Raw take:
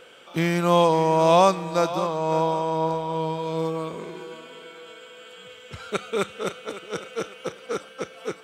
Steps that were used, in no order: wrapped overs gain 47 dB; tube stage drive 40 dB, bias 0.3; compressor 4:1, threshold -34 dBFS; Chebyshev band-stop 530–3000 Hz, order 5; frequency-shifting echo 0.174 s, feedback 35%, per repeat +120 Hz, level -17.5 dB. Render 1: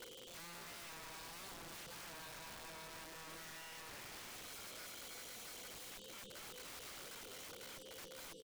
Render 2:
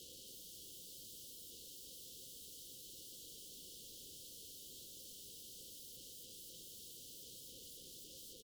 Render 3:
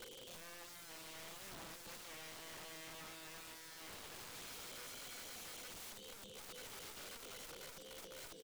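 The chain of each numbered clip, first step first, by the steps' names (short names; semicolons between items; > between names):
compressor > frequency-shifting echo > tube stage > Chebyshev band-stop > wrapped overs; frequency-shifting echo > compressor > wrapped overs > tube stage > Chebyshev band-stop; compressor > Chebyshev band-stop > tube stage > wrapped overs > frequency-shifting echo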